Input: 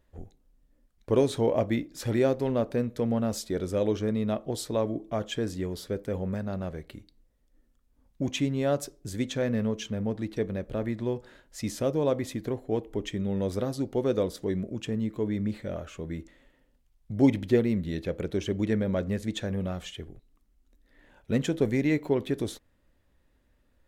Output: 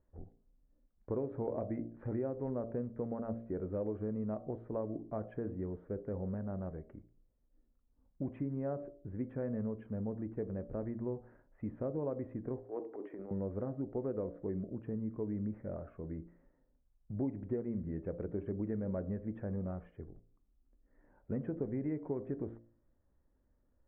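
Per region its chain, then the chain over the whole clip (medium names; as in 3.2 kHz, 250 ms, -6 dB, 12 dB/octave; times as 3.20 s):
12.63–13.31 s: high-pass 310 Hz 24 dB/octave + transient shaper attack -9 dB, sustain +8 dB
whole clip: Bessel low-pass 1 kHz, order 8; de-hum 57.37 Hz, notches 13; compression 5:1, threshold -27 dBFS; trim -6 dB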